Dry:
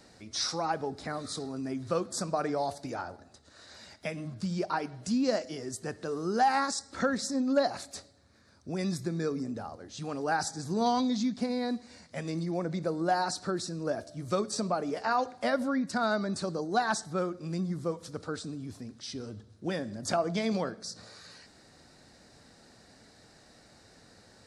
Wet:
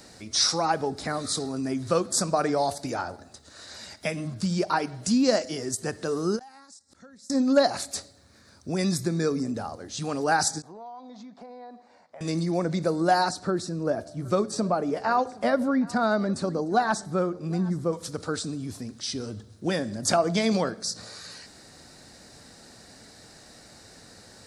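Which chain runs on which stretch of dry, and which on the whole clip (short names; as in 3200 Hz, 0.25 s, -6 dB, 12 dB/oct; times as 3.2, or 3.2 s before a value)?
6.39–7.3 tone controls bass +7 dB, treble +6 dB + flipped gate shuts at -34 dBFS, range -30 dB
10.62–12.21 band-pass 790 Hz, Q 2.2 + compressor 5:1, threshold -47 dBFS
13.29–17.93 high shelf 2200 Hz -11 dB + echo 0.767 s -21.5 dB
whole clip: high shelf 6200 Hz +8.5 dB; ending taper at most 390 dB/s; gain +6 dB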